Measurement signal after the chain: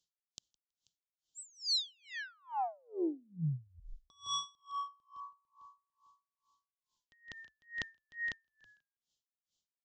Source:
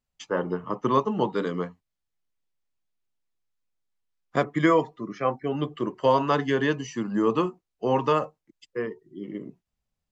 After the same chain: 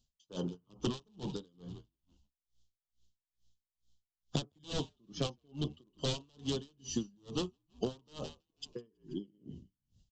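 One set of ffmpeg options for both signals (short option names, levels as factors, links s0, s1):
-filter_complex "[0:a]aresample=16000,aeval=exprs='0.106*(abs(mod(val(0)/0.106+3,4)-2)-1)':c=same,aresample=44100,firequalizer=gain_entry='entry(120,0);entry(480,-9);entry(2100,-25);entry(3100,3)':delay=0.05:min_phase=1,acompressor=threshold=0.00794:ratio=6,asplit=5[s0][s1][s2][s3][s4];[s1]adelay=162,afreqshift=-60,volume=0.178[s5];[s2]adelay=324,afreqshift=-120,volume=0.0832[s6];[s3]adelay=486,afreqshift=-180,volume=0.0394[s7];[s4]adelay=648,afreqshift=-240,volume=0.0184[s8];[s0][s5][s6][s7][s8]amix=inputs=5:normalize=0,aeval=exprs='val(0)*pow(10,-36*(0.5-0.5*cos(2*PI*2.3*n/s))/20)':c=same,volume=3.76"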